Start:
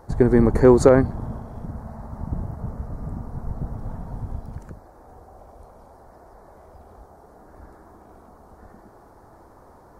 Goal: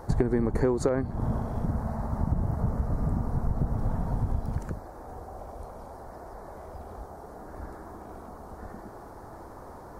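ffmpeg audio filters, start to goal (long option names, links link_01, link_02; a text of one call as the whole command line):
ffmpeg -i in.wav -af "acompressor=threshold=-26dB:ratio=16,volume=5dB" out.wav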